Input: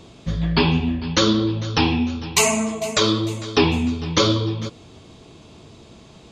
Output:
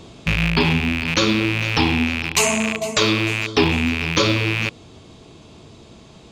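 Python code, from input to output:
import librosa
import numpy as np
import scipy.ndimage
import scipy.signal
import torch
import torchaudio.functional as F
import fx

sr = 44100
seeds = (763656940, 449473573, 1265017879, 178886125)

y = fx.rattle_buzz(x, sr, strikes_db=-30.0, level_db=-10.0)
y = fx.rider(y, sr, range_db=4, speed_s=0.5)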